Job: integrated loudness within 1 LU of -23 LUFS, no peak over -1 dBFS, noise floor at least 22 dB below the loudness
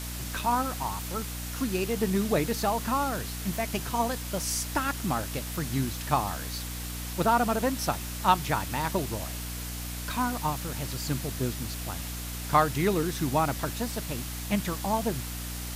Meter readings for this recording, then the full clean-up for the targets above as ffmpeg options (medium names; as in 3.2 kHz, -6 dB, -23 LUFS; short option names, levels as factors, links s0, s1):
hum 60 Hz; highest harmonic 300 Hz; hum level -35 dBFS; noise floor -36 dBFS; noise floor target -52 dBFS; loudness -29.5 LUFS; peak level -8.0 dBFS; loudness target -23.0 LUFS
-> -af "bandreject=f=60:t=h:w=4,bandreject=f=120:t=h:w=4,bandreject=f=180:t=h:w=4,bandreject=f=240:t=h:w=4,bandreject=f=300:t=h:w=4"
-af "afftdn=nr=16:nf=-36"
-af "volume=2.11"